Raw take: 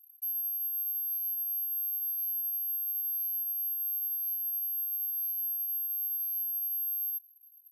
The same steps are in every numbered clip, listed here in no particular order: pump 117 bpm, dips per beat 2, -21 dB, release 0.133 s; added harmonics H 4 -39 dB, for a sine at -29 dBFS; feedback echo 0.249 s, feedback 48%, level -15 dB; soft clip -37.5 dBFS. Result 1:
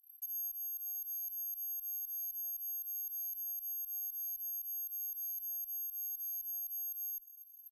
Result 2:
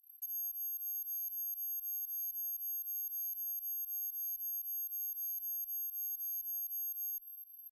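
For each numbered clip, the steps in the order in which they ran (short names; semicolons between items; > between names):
pump > soft clip > added harmonics > feedback echo; feedback echo > pump > soft clip > added harmonics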